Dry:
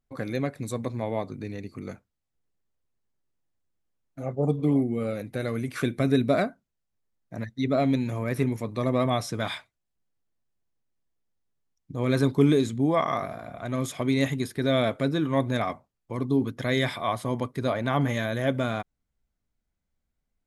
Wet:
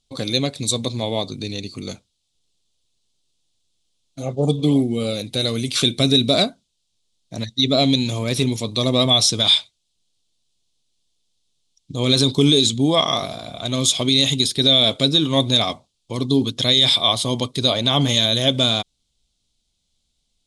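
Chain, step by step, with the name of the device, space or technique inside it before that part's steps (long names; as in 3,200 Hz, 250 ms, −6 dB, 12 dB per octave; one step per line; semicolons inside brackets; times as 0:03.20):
over-bright horn tweeter (high shelf with overshoot 2,500 Hz +12.5 dB, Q 3; brickwall limiter −11 dBFS, peak gain reduction 7.5 dB)
Butterworth low-pass 10,000 Hz 36 dB per octave
level +6 dB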